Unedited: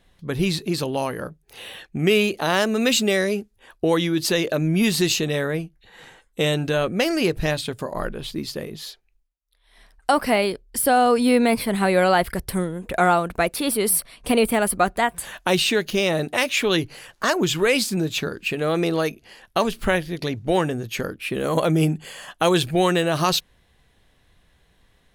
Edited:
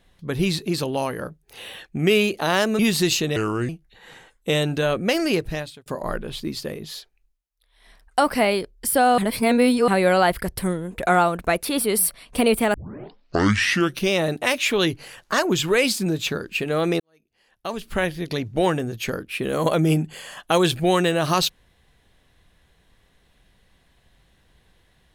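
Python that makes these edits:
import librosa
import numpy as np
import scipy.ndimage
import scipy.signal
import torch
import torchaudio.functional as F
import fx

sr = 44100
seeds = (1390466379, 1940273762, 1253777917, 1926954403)

y = fx.edit(x, sr, fx.cut(start_s=2.79, length_s=1.99),
    fx.speed_span(start_s=5.35, length_s=0.25, speed=0.76),
    fx.fade_out_span(start_s=7.2, length_s=0.57),
    fx.reverse_span(start_s=11.09, length_s=0.7),
    fx.tape_start(start_s=14.65, length_s=1.36),
    fx.fade_in_span(start_s=18.91, length_s=1.16, curve='qua'), tone=tone)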